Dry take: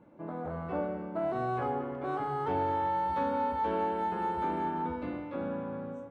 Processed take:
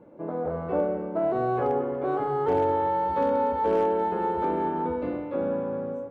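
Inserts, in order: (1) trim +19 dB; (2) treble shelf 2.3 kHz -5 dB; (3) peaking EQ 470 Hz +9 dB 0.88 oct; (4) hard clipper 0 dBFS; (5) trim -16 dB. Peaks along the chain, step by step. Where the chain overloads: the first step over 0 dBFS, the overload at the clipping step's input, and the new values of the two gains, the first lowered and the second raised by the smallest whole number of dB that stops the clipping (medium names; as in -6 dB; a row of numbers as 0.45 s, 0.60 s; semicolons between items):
-1.0 dBFS, -1.5 dBFS, +3.0 dBFS, 0.0 dBFS, -16.0 dBFS; step 3, 3.0 dB; step 1 +16 dB, step 5 -13 dB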